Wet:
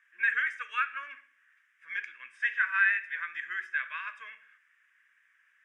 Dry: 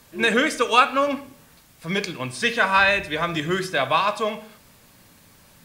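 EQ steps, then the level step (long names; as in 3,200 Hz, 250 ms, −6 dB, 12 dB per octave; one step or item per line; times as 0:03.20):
four-pole ladder band-pass 1,900 Hz, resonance 65%
phaser with its sweep stopped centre 1,800 Hz, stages 4
0.0 dB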